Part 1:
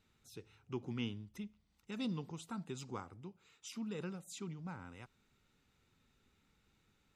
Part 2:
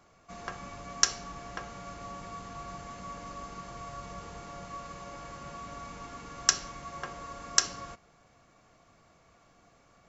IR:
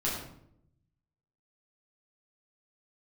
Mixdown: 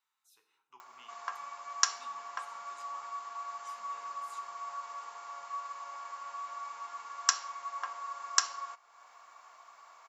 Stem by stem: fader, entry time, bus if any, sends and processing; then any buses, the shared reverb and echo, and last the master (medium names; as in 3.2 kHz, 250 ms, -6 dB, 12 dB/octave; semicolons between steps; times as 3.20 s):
-16.0 dB, 0.00 s, send -9.5 dB, none
-5.5 dB, 0.80 s, no send, treble shelf 4.9 kHz -5.5 dB; band-stop 6.2 kHz, Q 29; upward compressor, threshold -45 dBFS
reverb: on, RT60 0.70 s, pre-delay 7 ms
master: resonant high-pass 1 kHz, resonance Q 3.6; treble shelf 6.2 kHz +12 dB